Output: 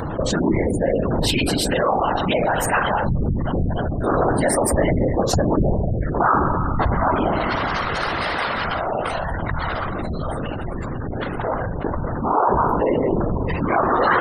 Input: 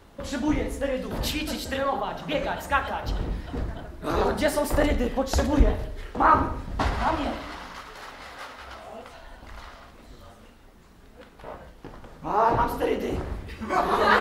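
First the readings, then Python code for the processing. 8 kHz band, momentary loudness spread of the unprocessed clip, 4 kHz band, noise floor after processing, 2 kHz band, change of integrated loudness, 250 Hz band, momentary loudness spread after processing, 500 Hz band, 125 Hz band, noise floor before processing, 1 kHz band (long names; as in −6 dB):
+10.0 dB, 20 LU, +6.5 dB, −27 dBFS, +5.5 dB, +5.0 dB, +7.5 dB, 8 LU, +7.0 dB, +10.0 dB, −51 dBFS, +5.5 dB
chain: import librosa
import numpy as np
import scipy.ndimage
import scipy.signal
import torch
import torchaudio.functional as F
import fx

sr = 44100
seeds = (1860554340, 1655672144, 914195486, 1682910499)

y = fx.peak_eq(x, sr, hz=8900.0, db=9.0, octaves=0.24)
y = fx.rev_spring(y, sr, rt60_s=4.0, pass_ms=(45,), chirp_ms=40, drr_db=16.0)
y = fx.spec_gate(y, sr, threshold_db=-20, keep='strong')
y = fx.whisperise(y, sr, seeds[0])
y = fx.env_flatten(y, sr, amount_pct=70)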